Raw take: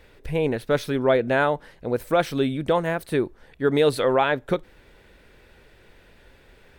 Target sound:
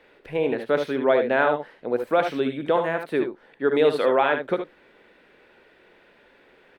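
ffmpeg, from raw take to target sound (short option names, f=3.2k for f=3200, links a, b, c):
-filter_complex "[0:a]acrossover=split=200 3700:gain=0.0794 1 0.2[a][b][c];[a][b][c]amix=inputs=3:normalize=0,asplit=2[d][e];[e]aecho=0:1:60|74:0.251|0.398[f];[d][f]amix=inputs=2:normalize=0"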